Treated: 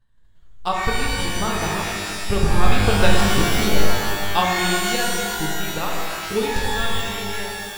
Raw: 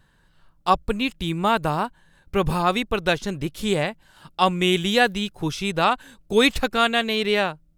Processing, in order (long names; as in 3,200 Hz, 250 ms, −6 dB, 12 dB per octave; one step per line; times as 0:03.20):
source passing by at 0:03.24, 6 m/s, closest 5.1 metres
low-shelf EQ 92 Hz +11 dB
in parallel at −1 dB: brickwall limiter −17.5 dBFS, peak gain reduction 12 dB
on the sum: transient designer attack +12 dB, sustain −3 dB
reverb with rising layers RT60 1.9 s, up +12 semitones, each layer −2 dB, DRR −2 dB
level −10 dB